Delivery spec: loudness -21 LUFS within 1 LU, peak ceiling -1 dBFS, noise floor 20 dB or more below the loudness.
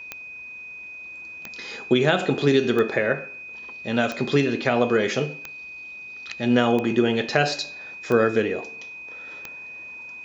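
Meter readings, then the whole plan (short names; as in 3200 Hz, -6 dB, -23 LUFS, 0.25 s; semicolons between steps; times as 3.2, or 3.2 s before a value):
clicks 8; steady tone 2500 Hz; tone level -36 dBFS; loudness -22.5 LUFS; peak -4.5 dBFS; loudness target -21.0 LUFS
-> de-click; notch 2500 Hz, Q 30; gain +1.5 dB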